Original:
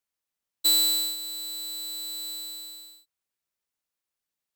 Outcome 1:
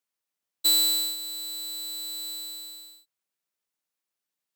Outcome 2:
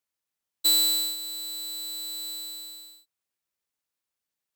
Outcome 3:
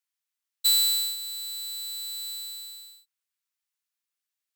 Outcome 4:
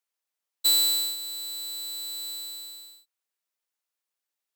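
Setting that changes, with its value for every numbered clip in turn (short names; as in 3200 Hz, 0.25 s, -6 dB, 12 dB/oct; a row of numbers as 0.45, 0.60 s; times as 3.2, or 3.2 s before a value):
HPF, cutoff: 130, 45, 1300, 390 Hz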